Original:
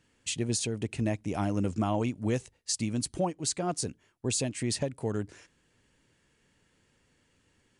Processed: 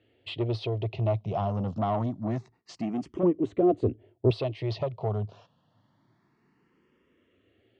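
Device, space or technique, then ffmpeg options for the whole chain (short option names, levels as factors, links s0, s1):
barber-pole phaser into a guitar amplifier: -filter_complex "[0:a]asplit=2[s0][s1];[s1]afreqshift=0.26[s2];[s0][s2]amix=inputs=2:normalize=1,asoftclip=type=tanh:threshold=0.0282,highpass=100,equalizer=f=110:t=q:w=4:g=8,equalizer=f=370:t=q:w=4:g=6,equalizer=f=670:t=q:w=4:g=9,equalizer=f=1100:t=q:w=4:g=4,equalizer=f=1600:t=q:w=4:g=-9,equalizer=f=2400:t=q:w=4:g=-5,lowpass=f=3700:w=0.5412,lowpass=f=3700:w=1.3066,asettb=1/sr,asplit=3[s3][s4][s5];[s3]atrim=end=3.234[s6];[s4]atrim=start=3.23:end=4.31,asetpts=PTS-STARTPTS,afade=t=in:d=0.004:c=qsin,afade=t=out:st=1.076:d=0.004:c=qsin,tiltshelf=f=970:g=9.5[s7];[s5]atrim=start=4.306[s8];[s6][s7]acrossfade=d=0.004:c1=hsin:c2=qsin[s9];[s9][s8]acrossfade=d=0.004:c1=qsin:c2=hsin,volume=1.68"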